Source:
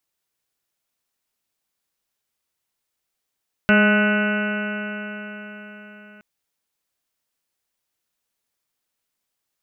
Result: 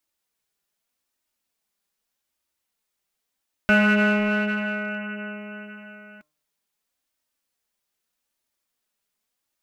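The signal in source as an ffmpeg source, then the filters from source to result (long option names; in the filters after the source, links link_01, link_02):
-f lavfi -i "aevalsrc='0.188*pow(10,-3*t/4.59)*sin(2*PI*207.11*t)+0.0631*pow(10,-3*t/4.59)*sin(2*PI*414.91*t)+0.0944*pow(10,-3*t/4.59)*sin(2*PI*624.07*t)+0.0251*pow(10,-3*t/4.59)*sin(2*PI*835.25*t)+0.0224*pow(10,-3*t/4.59)*sin(2*PI*1049.13*t)+0.0398*pow(10,-3*t/4.59)*sin(2*PI*1266.35*t)+0.168*pow(10,-3*t/4.59)*sin(2*PI*1487.54*t)+0.0211*pow(10,-3*t/4.59)*sin(2*PI*1713.3*t)+0.0376*pow(10,-3*t/4.59)*sin(2*PI*1944.23*t)+0.0376*pow(10,-3*t/4.59)*sin(2*PI*2180.88*t)+0.0299*pow(10,-3*t/4.59)*sin(2*PI*2423.8*t)+0.0562*pow(10,-3*t/4.59)*sin(2*PI*2673.5*t)+0.0266*pow(10,-3*t/4.59)*sin(2*PI*2930.47*t)':duration=2.52:sample_rate=44100"
-filter_complex "[0:a]bandreject=frequency=151.7:width_type=h:width=4,bandreject=frequency=303.4:width_type=h:width=4,bandreject=frequency=455.1:width_type=h:width=4,bandreject=frequency=606.8:width_type=h:width=4,bandreject=frequency=758.5:width_type=h:width=4,bandreject=frequency=910.2:width_type=h:width=4,bandreject=frequency=1061.9:width_type=h:width=4,bandreject=frequency=1213.6:width_type=h:width=4,bandreject=frequency=1365.3:width_type=h:width=4,flanger=delay=3.2:depth=1.8:regen=-29:speed=0.83:shape=sinusoidal,asplit=2[link_01][link_02];[link_02]asoftclip=type=hard:threshold=-26.5dB,volume=-7dB[link_03];[link_01][link_03]amix=inputs=2:normalize=0"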